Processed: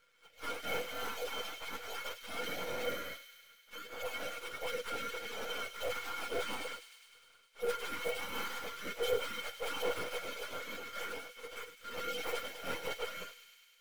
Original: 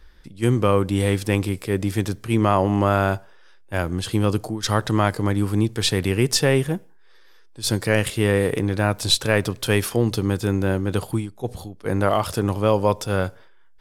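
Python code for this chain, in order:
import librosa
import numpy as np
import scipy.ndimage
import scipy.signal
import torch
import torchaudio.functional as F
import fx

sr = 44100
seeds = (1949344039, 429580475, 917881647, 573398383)

p1 = fx.octave_mirror(x, sr, pivot_hz=1100.0)
p2 = fx.spec_gate(p1, sr, threshold_db=-25, keep='weak')
p3 = fx.high_shelf(p2, sr, hz=3600.0, db=-11.0)
p4 = fx.tube_stage(p3, sr, drive_db=48.0, bias=0.8)
p5 = np.maximum(p4, 0.0)
p6 = fx.mod_noise(p5, sr, seeds[0], snr_db=20)
p7 = fx.small_body(p6, sr, hz=(490.0, 1400.0, 2200.0, 3100.0), ring_ms=70, db=18)
p8 = p7 + fx.echo_wet_highpass(p7, sr, ms=102, feedback_pct=75, hz=2800.0, wet_db=-9, dry=0)
y = F.gain(torch.from_numpy(p8), 16.5).numpy()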